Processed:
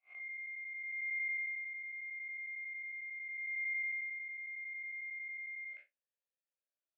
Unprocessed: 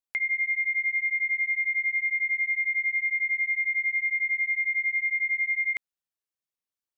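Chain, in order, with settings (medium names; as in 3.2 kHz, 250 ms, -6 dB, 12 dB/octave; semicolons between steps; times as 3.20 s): spectral blur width 114 ms; talking filter a-e 0.4 Hz; trim +7 dB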